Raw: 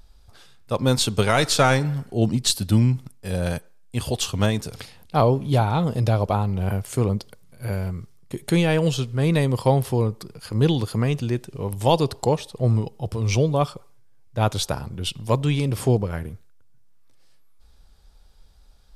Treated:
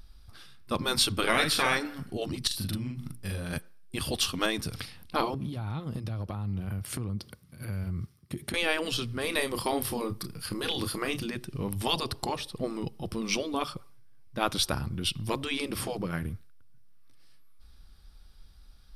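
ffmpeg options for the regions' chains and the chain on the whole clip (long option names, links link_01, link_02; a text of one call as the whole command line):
ffmpeg -i in.wav -filter_complex "[0:a]asettb=1/sr,asplit=3[link_01][link_02][link_03];[link_01]atrim=end=1.124[link_04];[link_02]atrim=start=1.12:end=1.77,asetpts=PTS-STARTPTS,afade=type=in:duration=0.004:curve=qsin,afade=type=out:start_time=0.646:duration=0.004:curve=qsin,equalizer=frequency=6000:width=0.98:gain=-7.5,asplit=2[link_05][link_06];[link_06]adelay=50,volume=-8.5dB[link_07];[link_05][link_07]amix=inputs=2:normalize=0,atrim=end_sample=28665[link_08];[link_03]atrim=start=1.766[link_09];[link_04][link_08]acrossfade=duration=0.004:curve1=hsin:curve2=qsin[link_10];[link_10][link_09]acrossfade=duration=0.004:curve1=qsin:curve2=hsin,asettb=1/sr,asplit=3[link_11][link_12][link_13];[link_11]atrim=end=2.474[link_14];[link_12]atrim=start=2.47:end=3.53,asetpts=PTS-STARTPTS,afade=type=in:duration=0.004:curve=qsin,afade=type=out:start_time=1.056:duration=0.004:curve=qsin,bandreject=frequency=60:width_type=h:width=6,bandreject=frequency=120:width_type=h:width=6,bandreject=frequency=180:width_type=h:width=6,bandreject=frequency=240:width_type=h:width=6,bandreject=frequency=300:width_type=h:width=6,bandreject=frequency=360:width_type=h:width=6,bandreject=frequency=420:width_type=h:width=6,bandreject=frequency=480:width_type=h:width=6,acompressor=threshold=-29dB:ratio=16:attack=3.2:release=140:knee=1:detection=peak,asplit=2[link_15][link_16];[link_16]adelay=41,volume=-2dB[link_17];[link_15][link_17]amix=inputs=2:normalize=0,atrim=end_sample=46746[link_18];[link_13]atrim=start=3.526[link_19];[link_14][link_18]acrossfade=duration=0.004:curve1=hsin:curve2=qsin[link_20];[link_20][link_19]acrossfade=duration=0.004:curve1=qsin:curve2=hsin,asettb=1/sr,asplit=3[link_21][link_22][link_23];[link_21]atrim=end=5.344[link_24];[link_22]atrim=start=5.34:end=8.54,asetpts=PTS-STARTPTS,afade=type=in:duration=0.004:curve=qsin,afade=type=out:start_time=3.196:duration=0.004:curve=qsin,highpass=frequency=59:width=0.5412,highpass=frequency=59:width=1.3066,lowshelf=frequency=370:gain=4,acompressor=threshold=-28dB:ratio=10:attack=3.2:release=140:knee=1:detection=peak[link_25];[link_23]atrim=start=8.536[link_26];[link_24][link_25]acrossfade=duration=0.004:curve1=hsin:curve2=qsin[link_27];[link_27][link_26]acrossfade=duration=0.004:curve1=qsin:curve2=hsin,asettb=1/sr,asplit=3[link_28][link_29][link_30];[link_28]atrim=end=9.214[link_31];[link_29]atrim=start=9.21:end=11.26,asetpts=PTS-STARTPTS,afade=type=in:duration=0.004:curve=qsin,afade=type=out:start_time=2.046:duration=0.004:curve=qsin,highshelf=frequency=8700:gain=7.5,asplit=2[link_32][link_33];[link_33]adelay=31,volume=-10dB[link_34];[link_32][link_34]amix=inputs=2:normalize=0,atrim=end_sample=90405[link_35];[link_30]atrim=start=11.256[link_36];[link_31][link_35]acrossfade=duration=0.004:curve1=hsin:curve2=qsin[link_37];[link_37][link_36]acrossfade=duration=0.004:curve1=qsin:curve2=hsin,superequalizer=7b=0.447:8b=0.447:9b=0.501:15b=0.398,afftfilt=real='re*lt(hypot(re,im),0.355)':imag='im*lt(hypot(re,im),0.355)':win_size=1024:overlap=0.75" out.wav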